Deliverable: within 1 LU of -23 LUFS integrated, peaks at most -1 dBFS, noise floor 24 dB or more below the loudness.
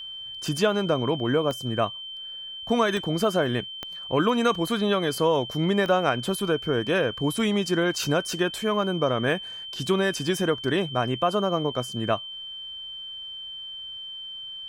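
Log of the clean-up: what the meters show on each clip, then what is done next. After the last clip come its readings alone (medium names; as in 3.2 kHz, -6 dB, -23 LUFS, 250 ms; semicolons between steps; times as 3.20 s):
clicks found 4; steady tone 3.1 kHz; tone level -35 dBFS; loudness -26.0 LUFS; peak level -7.5 dBFS; loudness target -23.0 LUFS
-> de-click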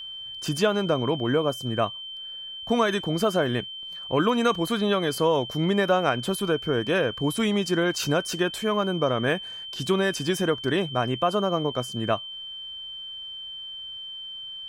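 clicks found 0; steady tone 3.1 kHz; tone level -35 dBFS
-> band-stop 3.1 kHz, Q 30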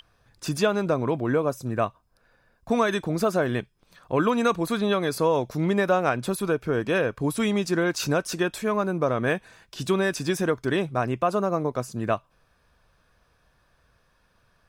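steady tone not found; loudness -25.5 LUFS; peak level -8.0 dBFS; loudness target -23.0 LUFS
-> trim +2.5 dB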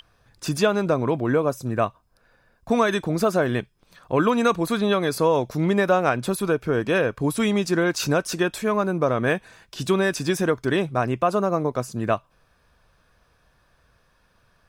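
loudness -23.0 LUFS; peak level -5.5 dBFS; noise floor -64 dBFS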